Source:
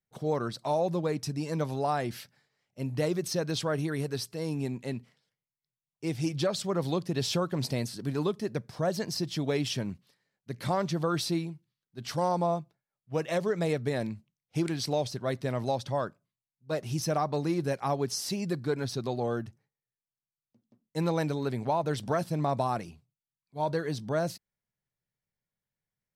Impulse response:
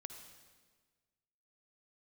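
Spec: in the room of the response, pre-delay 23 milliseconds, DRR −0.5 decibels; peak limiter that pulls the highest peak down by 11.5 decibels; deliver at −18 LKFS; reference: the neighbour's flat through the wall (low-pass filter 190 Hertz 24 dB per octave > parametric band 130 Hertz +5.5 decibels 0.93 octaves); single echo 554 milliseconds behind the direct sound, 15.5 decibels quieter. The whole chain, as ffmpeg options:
-filter_complex "[0:a]alimiter=level_in=3.5dB:limit=-24dB:level=0:latency=1,volume=-3.5dB,aecho=1:1:554:0.168,asplit=2[link_01][link_02];[1:a]atrim=start_sample=2205,adelay=23[link_03];[link_02][link_03]afir=irnorm=-1:irlink=0,volume=5dB[link_04];[link_01][link_04]amix=inputs=2:normalize=0,lowpass=frequency=190:width=0.5412,lowpass=frequency=190:width=1.3066,equalizer=frequency=130:width_type=o:width=0.93:gain=5.5,volume=16.5dB"

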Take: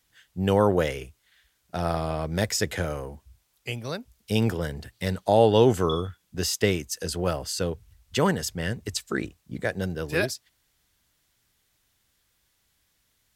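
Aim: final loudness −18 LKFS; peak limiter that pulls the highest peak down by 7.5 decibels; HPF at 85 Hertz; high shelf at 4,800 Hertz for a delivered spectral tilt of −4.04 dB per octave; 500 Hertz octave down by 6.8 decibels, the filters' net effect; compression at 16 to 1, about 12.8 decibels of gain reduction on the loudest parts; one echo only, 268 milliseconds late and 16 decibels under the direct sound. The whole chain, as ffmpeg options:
ffmpeg -i in.wav -af "highpass=85,equalizer=frequency=500:width_type=o:gain=-8.5,highshelf=frequency=4800:gain=6,acompressor=threshold=-31dB:ratio=16,alimiter=level_in=2dB:limit=-24dB:level=0:latency=1,volume=-2dB,aecho=1:1:268:0.158,volume=20.5dB" out.wav

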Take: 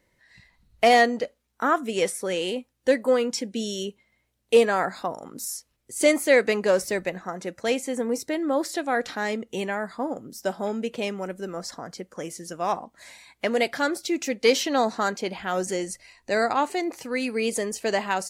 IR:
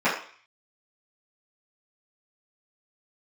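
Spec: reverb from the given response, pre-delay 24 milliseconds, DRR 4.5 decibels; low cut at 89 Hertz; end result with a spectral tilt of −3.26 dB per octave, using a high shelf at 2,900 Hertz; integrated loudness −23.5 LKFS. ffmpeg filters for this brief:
-filter_complex "[0:a]highpass=89,highshelf=frequency=2900:gain=-8.5,asplit=2[link_01][link_02];[1:a]atrim=start_sample=2205,adelay=24[link_03];[link_02][link_03]afir=irnorm=-1:irlink=0,volume=-22dB[link_04];[link_01][link_04]amix=inputs=2:normalize=0,volume=1dB"

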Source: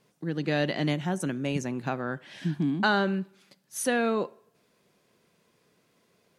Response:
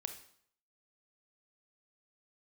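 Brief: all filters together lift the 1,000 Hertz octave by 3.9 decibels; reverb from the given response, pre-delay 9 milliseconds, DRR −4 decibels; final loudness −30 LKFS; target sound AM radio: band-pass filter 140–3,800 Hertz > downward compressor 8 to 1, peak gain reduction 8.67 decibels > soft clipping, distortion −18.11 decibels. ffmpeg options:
-filter_complex "[0:a]equalizer=frequency=1000:width_type=o:gain=5.5,asplit=2[link_01][link_02];[1:a]atrim=start_sample=2205,adelay=9[link_03];[link_02][link_03]afir=irnorm=-1:irlink=0,volume=6dB[link_04];[link_01][link_04]amix=inputs=2:normalize=0,highpass=140,lowpass=3800,acompressor=threshold=-20dB:ratio=8,asoftclip=threshold=-17.5dB,volume=-1.5dB"

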